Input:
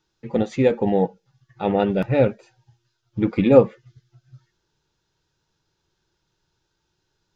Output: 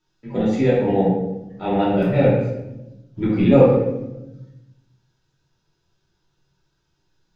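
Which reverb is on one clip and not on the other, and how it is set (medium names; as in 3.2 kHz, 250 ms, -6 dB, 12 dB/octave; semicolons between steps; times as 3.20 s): simulated room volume 360 m³, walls mixed, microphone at 2.9 m; trim -6.5 dB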